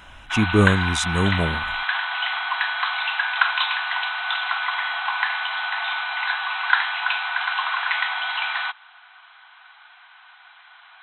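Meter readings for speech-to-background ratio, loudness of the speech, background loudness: 1.5 dB, -22.0 LUFS, -23.5 LUFS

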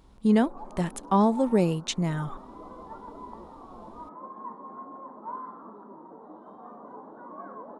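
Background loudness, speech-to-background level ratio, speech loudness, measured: -44.0 LUFS, 18.5 dB, -25.5 LUFS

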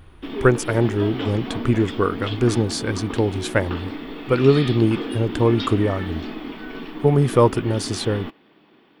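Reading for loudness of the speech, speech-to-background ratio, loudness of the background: -21.0 LUFS, 10.0 dB, -31.0 LUFS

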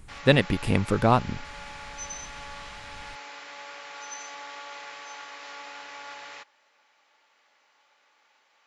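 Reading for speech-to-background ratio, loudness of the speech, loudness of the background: 17.0 dB, -23.0 LUFS, -40.0 LUFS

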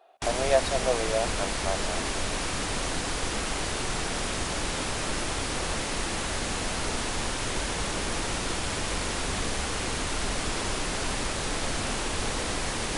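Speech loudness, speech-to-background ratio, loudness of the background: -30.0 LUFS, -0.5 dB, -29.5 LUFS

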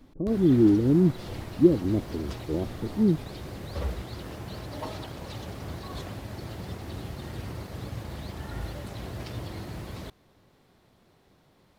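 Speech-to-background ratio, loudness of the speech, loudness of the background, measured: 14.5 dB, -24.0 LUFS, -38.5 LUFS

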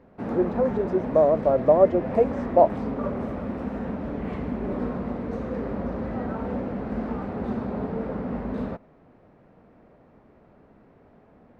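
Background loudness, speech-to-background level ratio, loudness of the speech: -30.5 LUFS, 8.5 dB, -22.0 LUFS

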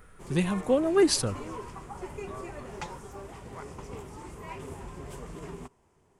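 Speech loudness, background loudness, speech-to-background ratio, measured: -26.0 LUFS, -42.0 LUFS, 16.0 dB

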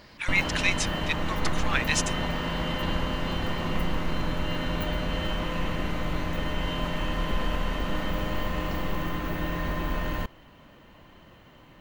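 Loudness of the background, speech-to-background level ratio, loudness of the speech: -30.5 LUFS, 2.0 dB, -28.5 LUFS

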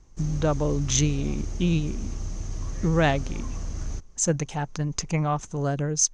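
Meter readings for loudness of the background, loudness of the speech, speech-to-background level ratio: -35.5 LUFS, -26.0 LUFS, 9.5 dB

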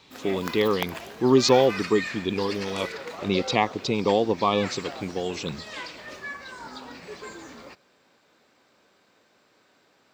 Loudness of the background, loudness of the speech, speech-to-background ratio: -36.5 LUFS, -24.5 LUFS, 12.0 dB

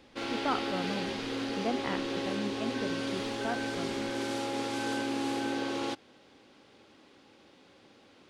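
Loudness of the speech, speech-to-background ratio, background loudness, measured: -38.5 LUFS, -4.5 dB, -34.0 LUFS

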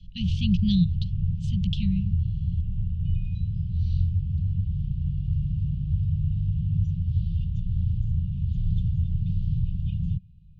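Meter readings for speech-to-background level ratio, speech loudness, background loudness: 0.0 dB, -27.5 LUFS, -27.5 LUFS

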